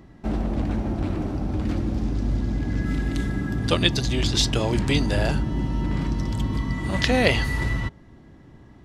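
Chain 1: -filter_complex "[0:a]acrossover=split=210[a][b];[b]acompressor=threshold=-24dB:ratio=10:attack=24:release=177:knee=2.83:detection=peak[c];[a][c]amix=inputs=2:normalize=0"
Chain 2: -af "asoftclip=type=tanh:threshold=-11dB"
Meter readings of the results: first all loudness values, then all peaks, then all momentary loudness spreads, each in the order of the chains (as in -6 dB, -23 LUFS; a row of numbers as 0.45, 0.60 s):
-25.5, -25.0 LUFS; -4.5, -11.0 dBFS; 4, 5 LU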